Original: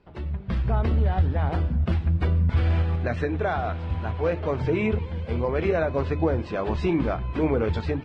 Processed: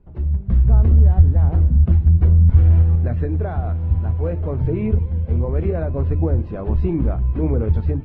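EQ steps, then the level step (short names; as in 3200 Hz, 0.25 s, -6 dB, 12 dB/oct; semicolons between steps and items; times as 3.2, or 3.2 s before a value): tilt -4.5 dB/oct; -6.5 dB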